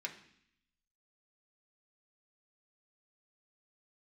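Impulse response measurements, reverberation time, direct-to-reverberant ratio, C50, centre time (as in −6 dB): 0.65 s, 0.0 dB, 11.0 dB, 14 ms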